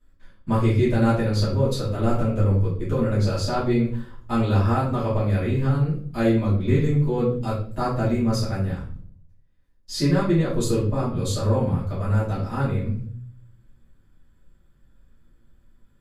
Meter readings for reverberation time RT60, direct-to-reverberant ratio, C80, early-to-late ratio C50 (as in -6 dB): 0.50 s, -11.5 dB, 9.5 dB, 4.5 dB